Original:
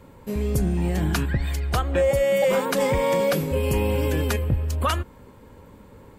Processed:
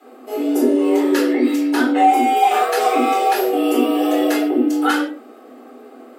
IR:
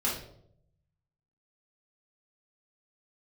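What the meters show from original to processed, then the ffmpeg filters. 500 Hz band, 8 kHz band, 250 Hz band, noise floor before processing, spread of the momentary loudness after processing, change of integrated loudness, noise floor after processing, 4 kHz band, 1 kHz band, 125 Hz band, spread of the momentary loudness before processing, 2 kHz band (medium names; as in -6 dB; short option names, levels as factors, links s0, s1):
+3.0 dB, +3.0 dB, +12.0 dB, -48 dBFS, 6 LU, +6.5 dB, -42 dBFS, +5.0 dB, +14.0 dB, under -30 dB, 6 LU, +6.0 dB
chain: -filter_complex "[0:a]bandreject=f=780:w=12,afreqshift=220[s0];[1:a]atrim=start_sample=2205,afade=t=out:st=0.22:d=0.01,atrim=end_sample=10143[s1];[s0][s1]afir=irnorm=-1:irlink=0,volume=0.75"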